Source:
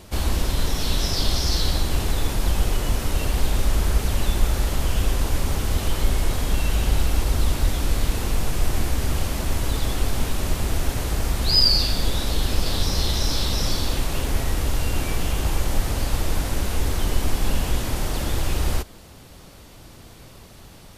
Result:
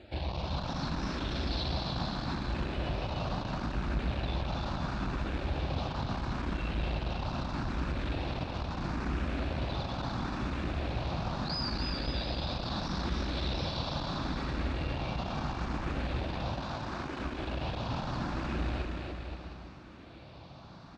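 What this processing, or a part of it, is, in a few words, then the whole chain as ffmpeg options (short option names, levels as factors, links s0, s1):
barber-pole phaser into a guitar amplifier: -filter_complex "[0:a]asplit=2[s0][s1];[s1]afreqshift=0.75[s2];[s0][s2]amix=inputs=2:normalize=1,asoftclip=type=tanh:threshold=0.0841,highpass=84,equalizer=f=96:t=q:w=4:g=-7,equalizer=f=440:t=q:w=4:g=-9,equalizer=f=2000:t=q:w=4:g=-7,equalizer=f=3100:t=q:w=4:g=-8,lowpass=f=3800:w=0.5412,lowpass=f=3800:w=1.3066,asettb=1/sr,asplit=3[s3][s4][s5];[s3]atrim=end=16.614[s6];[s4]atrim=start=16.61:end=17.2,asetpts=PTS-STARTPTS,afade=t=in:d=0.004:c=qsin,afade=t=out:st=0.586:d=0.004:c=qsin,highpass=280[s7];[s5]atrim=start=17.196[s8];[s6][s7]acrossfade=d=0.004:c1=hsin:c2=qsin[s9];[s9][s8]acrossfade=d=0.004:c1=qsin:c2=hsin,aecho=1:1:290|522|707.6|856.1|974.9:0.631|0.398|0.251|0.158|0.1"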